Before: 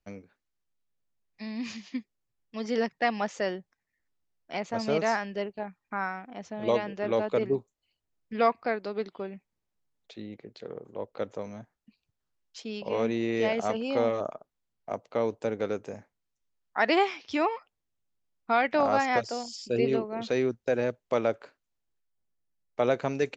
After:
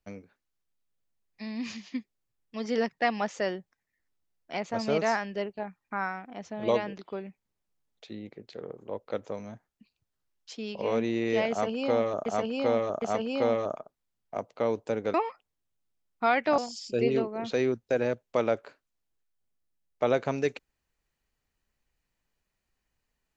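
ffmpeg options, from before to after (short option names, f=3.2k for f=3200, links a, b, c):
-filter_complex "[0:a]asplit=6[a][b][c][d][e][f];[a]atrim=end=6.982[g];[b]atrim=start=9.048:end=14.332[h];[c]atrim=start=13.568:end=14.332[i];[d]atrim=start=13.568:end=15.692[j];[e]atrim=start=17.408:end=18.852[k];[f]atrim=start=19.348[l];[g][h]acrossfade=d=0.004:c1=hsin:c2=hsin[m];[m][i]acrossfade=d=0.004:c1=hsin:c2=hsin[n];[n][j]acrossfade=d=0.004:c1=hsin:c2=hsin[o];[o][k]acrossfade=d=0.004:c1=hsin:c2=hsin[p];[p][l]acrossfade=d=0.004:c1=hsin:c2=hsin"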